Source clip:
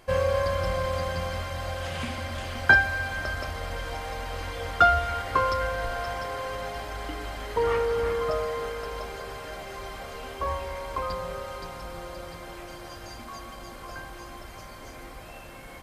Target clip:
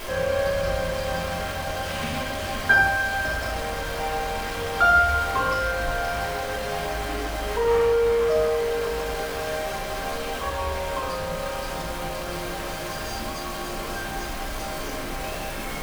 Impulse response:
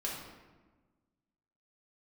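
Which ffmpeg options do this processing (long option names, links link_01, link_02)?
-filter_complex "[0:a]aeval=exprs='val(0)+0.5*0.0447*sgn(val(0))':channel_layout=same[link_01];[1:a]atrim=start_sample=2205,afade=type=out:start_time=0.24:duration=0.01,atrim=end_sample=11025[link_02];[link_01][link_02]afir=irnorm=-1:irlink=0,volume=-2.5dB"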